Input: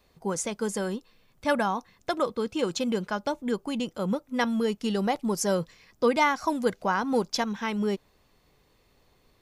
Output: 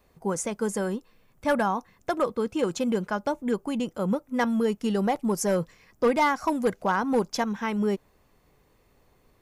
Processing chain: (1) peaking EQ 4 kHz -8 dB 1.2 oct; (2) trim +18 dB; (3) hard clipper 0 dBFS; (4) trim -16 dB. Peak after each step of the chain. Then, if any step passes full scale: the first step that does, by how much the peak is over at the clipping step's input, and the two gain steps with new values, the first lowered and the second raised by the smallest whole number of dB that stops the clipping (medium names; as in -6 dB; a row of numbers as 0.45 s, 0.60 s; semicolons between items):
-12.0 dBFS, +6.0 dBFS, 0.0 dBFS, -16.0 dBFS; step 2, 6.0 dB; step 2 +12 dB, step 4 -10 dB